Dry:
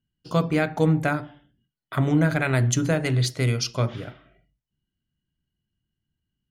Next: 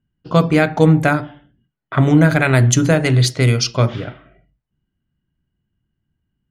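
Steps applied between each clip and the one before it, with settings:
low-pass that shuts in the quiet parts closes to 1,900 Hz, open at −18 dBFS
level +8.5 dB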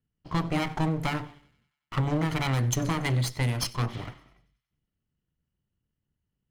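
lower of the sound and its delayed copy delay 0.96 ms
downward compressor, threshold −14 dBFS, peak gain reduction 6 dB
delay with a high-pass on its return 94 ms, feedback 58%, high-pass 1,900 Hz, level −22 dB
level −8.5 dB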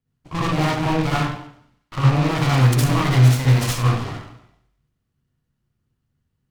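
loose part that buzzes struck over −29 dBFS, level −29 dBFS
convolution reverb RT60 0.60 s, pre-delay 53 ms, DRR −7.5 dB
short delay modulated by noise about 1,400 Hz, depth 0.053 ms

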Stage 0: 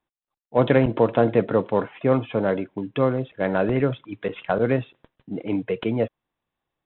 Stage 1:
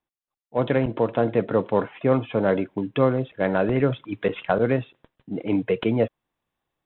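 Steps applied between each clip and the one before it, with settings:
speech leveller within 5 dB 0.5 s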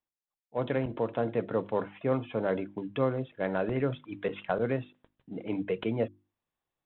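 mains-hum notches 50/100/150/200/250/300/350 Hz
level −8 dB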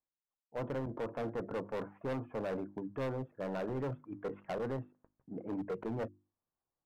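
low-pass filter 1,400 Hz 24 dB per octave
hard clipping −29 dBFS, distortion −8 dB
level −4 dB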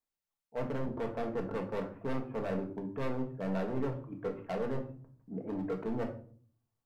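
rectangular room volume 430 cubic metres, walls furnished, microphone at 1.6 metres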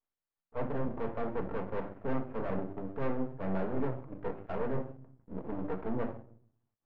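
half-wave rectification
low-pass filter 1,900 Hz 12 dB per octave
level +3.5 dB

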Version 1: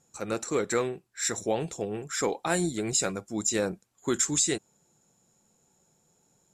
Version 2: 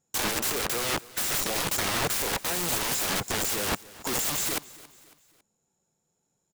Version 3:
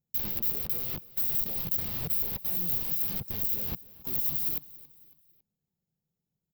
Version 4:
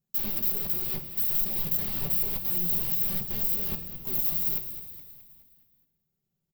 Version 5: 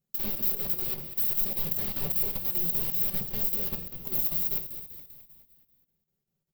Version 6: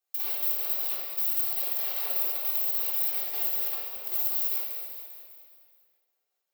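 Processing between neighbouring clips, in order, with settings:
leveller curve on the samples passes 5; wrap-around overflow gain 21 dB; repeating echo 276 ms, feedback 44%, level −20 dB
drawn EQ curve 170 Hz 0 dB, 280 Hz −9 dB, 1,600 Hz −20 dB, 2,400 Hz −15 dB, 4,900 Hz −12 dB, 8,500 Hz −30 dB, 15,000 Hz +8 dB; level −2.5 dB
comb filter 5.2 ms, depth 67%; echo with shifted repeats 210 ms, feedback 52%, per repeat −49 Hz, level −11.5 dB; on a send at −7 dB: convolution reverb RT60 0.70 s, pre-delay 3 ms
parametric band 500 Hz +4.5 dB 0.54 octaves; mains-hum notches 60/120/180 Hz; square-wave tremolo 5.1 Hz, depth 60%, duty 80%
high-pass filter 570 Hz 24 dB per octave; downward compressor 1.5 to 1, threshold −33 dBFS, peak gain reduction 4.5 dB; rectangular room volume 1,900 cubic metres, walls mixed, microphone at 3.7 metres

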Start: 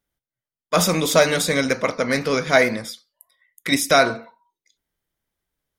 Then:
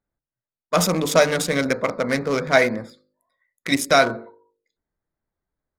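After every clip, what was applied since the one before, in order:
adaptive Wiener filter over 15 samples
hum removal 50.93 Hz, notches 11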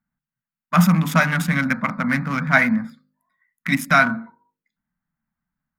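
drawn EQ curve 110 Hz 0 dB, 160 Hz +13 dB, 230 Hz +13 dB, 410 Hz −21 dB, 780 Hz +2 dB, 1,500 Hz +9 dB, 2,800 Hz +3 dB, 4,000 Hz −5 dB, 8,400 Hz −5 dB, 14,000 Hz +4 dB
level −3 dB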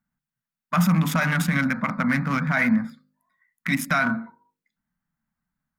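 brickwall limiter −12 dBFS, peak gain reduction 10.5 dB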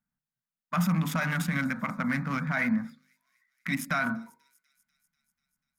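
delay with a high-pass on its return 245 ms, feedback 66%, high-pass 5,400 Hz, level −19.5 dB
level −6.5 dB

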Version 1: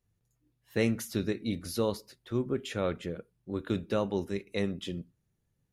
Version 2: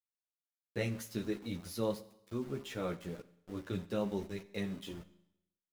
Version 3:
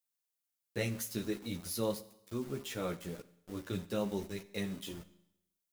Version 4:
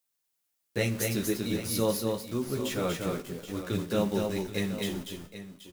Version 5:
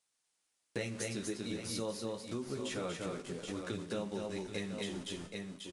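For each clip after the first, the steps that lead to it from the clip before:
centre clipping without the shift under −42.5 dBFS; multi-voice chorus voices 4, 0.46 Hz, delay 13 ms, depth 3.9 ms; four-comb reverb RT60 0.81 s, combs from 31 ms, DRR 15.5 dB; level −3.5 dB
high-shelf EQ 5,400 Hz +10.5 dB
multi-tap delay 239/266/778 ms −4/−14/−12.5 dB; level +6.5 dB
downsampling to 22,050 Hz; downward compressor 4 to 1, threshold −40 dBFS, peak gain reduction 15 dB; low-shelf EQ 130 Hz −7 dB; level +3.5 dB

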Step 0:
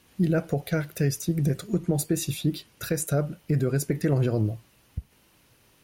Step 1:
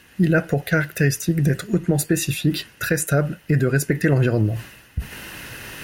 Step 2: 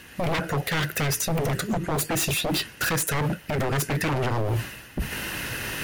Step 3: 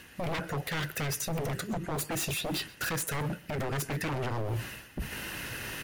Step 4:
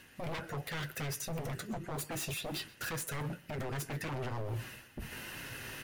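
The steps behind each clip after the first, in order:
flat-topped bell 2,000 Hz +10 dB 1.1 octaves; notch filter 2,300 Hz, Q 5.8; reversed playback; upward compression, threshold −26 dBFS; reversed playback; level +5.5 dB
brickwall limiter −15.5 dBFS, peak gain reduction 9 dB; wave folding −24 dBFS; level +4.5 dB
reversed playback; upward compression, threshold −28 dBFS; reversed playback; single-tap delay 129 ms −22.5 dB; level −7.5 dB
flanger 0.91 Hz, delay 7.3 ms, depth 1.4 ms, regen −49%; level −2 dB

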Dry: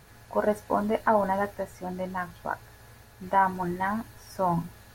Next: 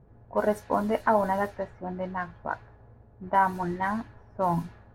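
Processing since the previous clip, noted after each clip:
low-pass that shuts in the quiet parts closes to 490 Hz, open at −22.5 dBFS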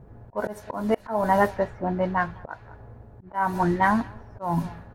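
slap from a distant wall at 35 metres, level −26 dB
volume swells 296 ms
level +8 dB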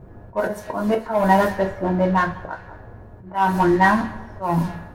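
in parallel at −3.5 dB: hard clipping −23.5 dBFS, distortion −7 dB
on the sum: coupled-rooms reverb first 0.24 s, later 1.6 s, from −20 dB, DRR 2 dB

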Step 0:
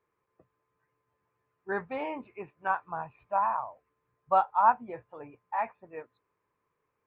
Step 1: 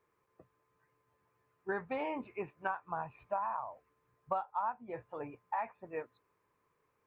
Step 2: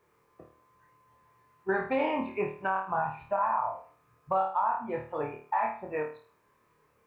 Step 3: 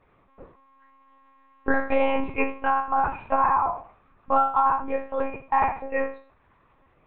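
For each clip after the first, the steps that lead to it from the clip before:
downward compressor 8 to 1, threshold −35 dBFS, peak gain reduction 18 dB; level +2.5 dB
on a send: flutter between parallel walls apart 4.5 metres, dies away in 0.42 s; on the sum: brickwall limiter −26 dBFS, peak gain reduction 6.5 dB; level +7.5 dB
frequency shifter +21 Hz; one-pitch LPC vocoder at 8 kHz 270 Hz; level +7 dB

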